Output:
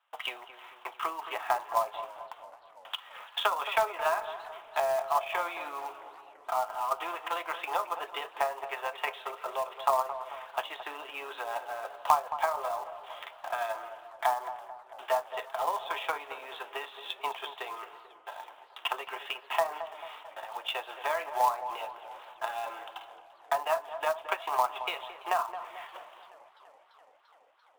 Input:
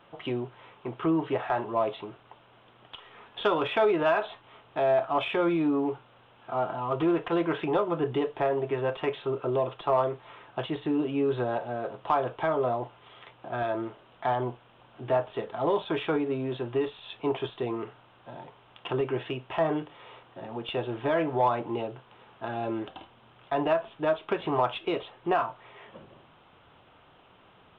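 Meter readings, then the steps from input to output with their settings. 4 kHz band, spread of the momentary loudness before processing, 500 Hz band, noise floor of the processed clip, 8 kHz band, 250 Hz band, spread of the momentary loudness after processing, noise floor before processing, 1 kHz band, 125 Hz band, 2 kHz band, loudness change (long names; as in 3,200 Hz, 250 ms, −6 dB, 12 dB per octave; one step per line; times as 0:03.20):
+2.0 dB, 16 LU, −7.5 dB, −58 dBFS, can't be measured, −27.0 dB, 16 LU, −58 dBFS, +1.0 dB, below −30 dB, +0.5 dB, −4.0 dB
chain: noise gate with hold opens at −43 dBFS
transient designer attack +7 dB, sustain −4 dB
high-pass filter 810 Hz 24 dB per octave
dynamic equaliser 1,500 Hz, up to −5 dB, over −46 dBFS, Q 4
treble cut that deepens with the level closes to 1,600 Hz, closed at −25.5 dBFS
in parallel at −3 dB: downward compressor 4 to 1, threshold −45 dBFS, peak gain reduction 22 dB
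on the sum: floating-point word with a short mantissa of 2 bits
on a send: feedback echo with a low-pass in the loop 220 ms, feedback 57%, low-pass 1,200 Hz, level −10 dB
on the sum: feedback echo with a swinging delay time 338 ms, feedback 75%, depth 115 cents, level −23 dB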